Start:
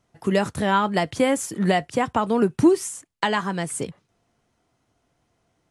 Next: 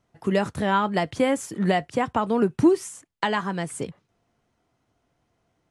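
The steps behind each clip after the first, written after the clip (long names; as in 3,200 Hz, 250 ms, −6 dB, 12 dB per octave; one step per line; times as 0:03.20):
high-shelf EQ 5,400 Hz −6.5 dB
level −1.5 dB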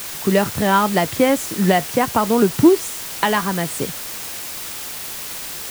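bit-depth reduction 6 bits, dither triangular
level +6 dB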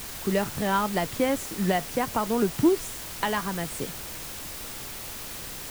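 background noise pink −34 dBFS
level −9 dB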